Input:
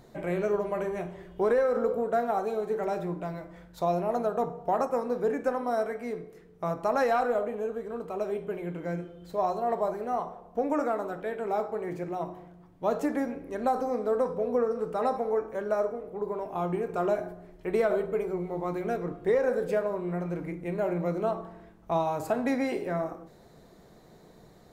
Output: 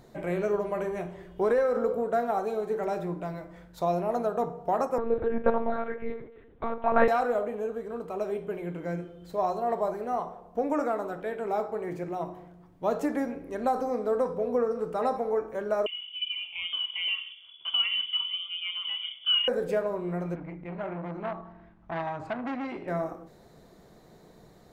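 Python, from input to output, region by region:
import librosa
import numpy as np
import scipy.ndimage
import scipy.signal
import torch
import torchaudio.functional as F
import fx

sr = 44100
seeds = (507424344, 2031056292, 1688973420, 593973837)

y = fx.chain(x, sr, fx.comb(ms=3.7, depth=0.97),
    fx.lpc_monotone(seeds[0], pitch_hz=230.0, order=10), at=(4.98, 7.08))
y = fx.chain(y, sr, fx.fixed_phaser(hz=1100.0, stages=8),
    fx.freq_invert(carrier_hz=3400), at=(15.86, 19.48))
y = fx.chain(y, sr, fx.lowpass(hz=2700.0, slope=12),
    fx.peak_eq(hz=460.0, db=-11.5, octaves=0.61),
    fx.transformer_sat(knee_hz=1100.0), at=(20.35, 22.88))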